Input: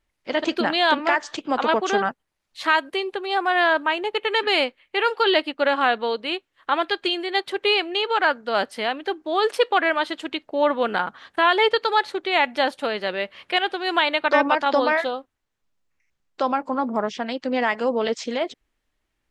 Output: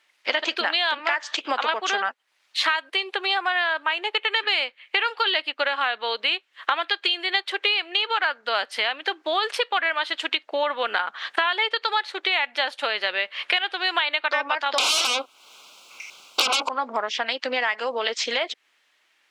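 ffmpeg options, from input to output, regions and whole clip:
-filter_complex "[0:a]asettb=1/sr,asplit=3[a][b][c];[a]atrim=end=14.784[d];[b]atrim=start=14.78:end=16.69,asetpts=PTS-STARTPTS,afade=t=in:d=0.004:c=qsin,afade=t=out:st=1.906:d=0.004:c=qsin,acompressor=threshold=-23dB:ratio=2.5:attack=3.2:release=140:knee=1:detection=peak,aeval=exprs='0.251*sin(PI/2*10*val(0)/0.251)':c=same,asuperstop=centerf=1800:order=4:qfactor=1.8[e];[c]atrim=start=16.686[f];[d][e]acrossfade=d=0.004:c1=hsin:c2=qsin[g];[g][f]acrossfade=d=0.004:c1=qsin:c2=hsin,equalizer=f=2.8k:w=0.37:g=13,acompressor=threshold=-26dB:ratio=6,highpass=450,volume=5dB"

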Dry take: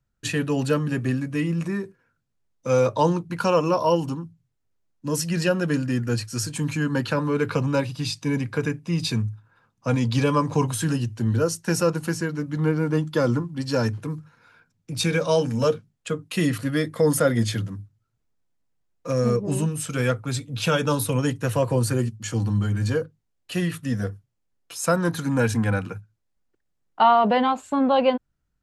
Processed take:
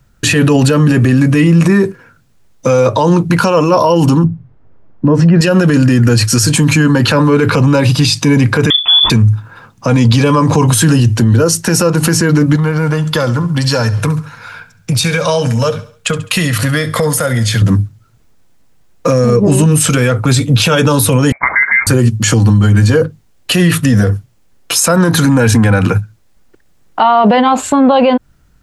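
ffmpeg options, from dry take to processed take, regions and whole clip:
-filter_complex "[0:a]asettb=1/sr,asplit=3[a][b][c];[a]atrim=end=4.244[d];[b]atrim=start=4.24:end=5.41,asetpts=PTS-STARTPTS,afade=t=in:d=0.004:c=qsin,afade=t=out:st=1.166:d=0.004:c=qsin,lowpass=1.2k,acontrast=87[e];[c]atrim=start=5.406[f];[d][e]acrossfade=d=0.004:c1=hsin:c2=qsin[g];[g][f]acrossfade=d=0.004:c1=qsin:c2=hsin,asettb=1/sr,asplit=3[h][i][j];[h]atrim=end=8.704[k];[i]atrim=start=8.7:end=9.1,asetpts=PTS-STARTPTS,afade=t=in:d=0.004:c=qsin,afade=t=out:st=0.396:d=0.004:c=qsin,lowshelf=f=190:g=10,acrusher=bits=8:mode=log:mix=0:aa=0.000001,lowpass=f=3.1k:t=q:w=0.5098,lowpass=f=3.1k:t=q:w=0.6013,lowpass=f=3.1k:t=q:w=0.9,lowpass=f=3.1k:t=q:w=2.563,afreqshift=-3600[l];[j]atrim=start=9.096[m];[k][l]acrossfade=d=0.004:c1=hsin:c2=qsin[n];[n][m]acrossfade=d=0.004:c1=qsin:c2=hsin,asettb=1/sr,asplit=3[o][p][q];[o]atrim=end=12.564[r];[p]atrim=start=12.56:end=17.62,asetpts=PTS-STARTPTS,afade=t=in:d=0.004:c=qsin,afade=t=out:st=5.056:d=0.004:c=qsin,equalizer=f=310:w=1.3:g=-11.5,acompressor=threshold=-34dB:ratio=12:attack=3.2:release=140:knee=1:detection=peak,aecho=1:1:69|138|207|276:0.158|0.0697|0.0307|0.0135,atrim=end_sample=223146[s];[q]atrim=start=17.616[t];[r][s]acrossfade=d=0.004:c1=hsin:c2=qsin[u];[u][t]acrossfade=d=0.004:c1=qsin:c2=hsin,asettb=1/sr,asplit=3[v][w][x];[v]atrim=end=21.324[y];[w]atrim=start=21.32:end=21.87,asetpts=PTS-STARTPTS,afade=t=in:d=0.004:c=qsin,afade=t=out:st=0.546:d=0.004:c=qsin,highpass=f=530:w=0.5412,highpass=f=530:w=1.3066,lowpass=f=2.2k:t=q:w=0.5098,lowpass=f=2.2k:t=q:w=0.6013,lowpass=f=2.2k:t=q:w=0.9,lowpass=f=2.2k:t=q:w=2.563,afreqshift=-2600[z];[x]atrim=start=21.866[aa];[y][z]acrossfade=d=0.004:c1=hsin:c2=qsin[ab];[ab][aa]acrossfade=d=0.004:c1=qsin:c2=hsin,acompressor=threshold=-23dB:ratio=6,alimiter=level_in=26dB:limit=-1dB:release=50:level=0:latency=1,volume=-1dB"

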